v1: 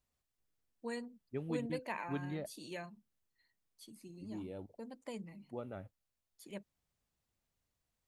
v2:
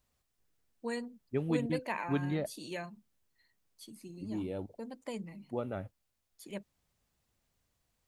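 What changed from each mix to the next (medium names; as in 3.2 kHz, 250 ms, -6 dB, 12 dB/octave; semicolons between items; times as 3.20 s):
first voice +4.5 dB; second voice +7.5 dB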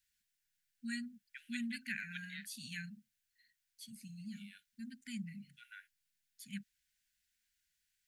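second voice: add steep high-pass 470 Hz 96 dB/octave; master: add brick-wall FIR band-stop 260–1400 Hz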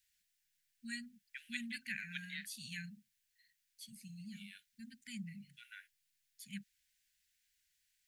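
second voice +3.5 dB; master: add high-order bell 580 Hz -15 dB 2.5 oct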